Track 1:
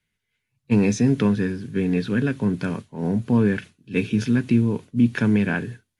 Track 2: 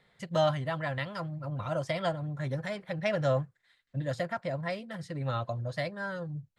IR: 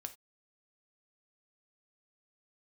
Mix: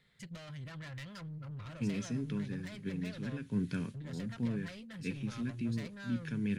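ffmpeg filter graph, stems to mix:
-filter_complex "[0:a]adelay=1100,volume=-9.5dB,asplit=2[a][b];[b]volume=-11dB[c];[1:a]acompressor=threshold=-31dB:ratio=12,asoftclip=type=tanh:threshold=-38dB,volume=-1dB,asplit=2[d][e];[e]apad=whole_len=312908[f];[a][f]sidechaincompress=threshold=-55dB:ratio=3:attack=16:release=173[g];[2:a]atrim=start_sample=2205[h];[c][h]afir=irnorm=-1:irlink=0[i];[g][d][i]amix=inputs=3:normalize=0,equalizer=f=730:t=o:w=1.6:g=-13"

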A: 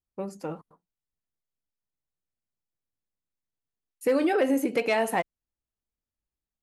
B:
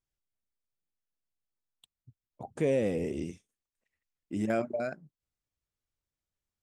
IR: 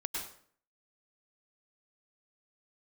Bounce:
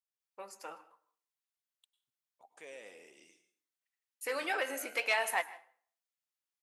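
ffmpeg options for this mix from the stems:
-filter_complex "[0:a]flanger=delay=2:depth=6.3:regen=-75:speed=1.8:shape=sinusoidal,adelay=200,volume=3dB,asplit=3[a][b][c];[b]volume=-17dB[d];[c]volume=-21dB[e];[1:a]volume=-11.5dB,asplit=2[f][g];[g]volume=-8.5dB[h];[2:a]atrim=start_sample=2205[i];[d][h]amix=inputs=2:normalize=0[j];[j][i]afir=irnorm=-1:irlink=0[k];[e]aecho=0:1:156:1[l];[a][f][k][l]amix=inputs=4:normalize=0,highpass=1.1k"

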